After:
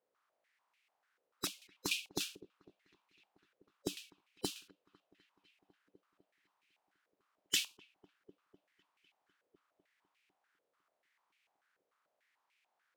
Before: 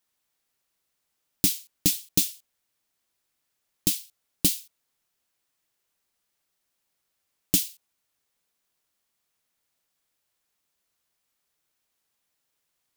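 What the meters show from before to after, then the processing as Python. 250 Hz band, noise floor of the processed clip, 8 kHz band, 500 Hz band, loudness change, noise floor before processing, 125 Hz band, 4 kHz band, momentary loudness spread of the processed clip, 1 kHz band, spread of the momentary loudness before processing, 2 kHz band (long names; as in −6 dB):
−14.0 dB, −85 dBFS, −15.5 dB, −4.5 dB, −14.5 dB, −79 dBFS, −19.0 dB, −7.0 dB, 16 LU, can't be measured, 7 LU, −0.5 dB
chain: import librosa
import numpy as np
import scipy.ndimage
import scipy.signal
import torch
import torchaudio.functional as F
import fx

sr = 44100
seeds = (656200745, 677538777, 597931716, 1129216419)

y = fx.spec_quant(x, sr, step_db=30)
y = fx.echo_wet_lowpass(y, sr, ms=251, feedback_pct=78, hz=1600.0, wet_db=-22.5)
y = fx.filter_held_bandpass(y, sr, hz=6.8, low_hz=500.0, high_hz=2400.0)
y = y * librosa.db_to_amplitude(13.5)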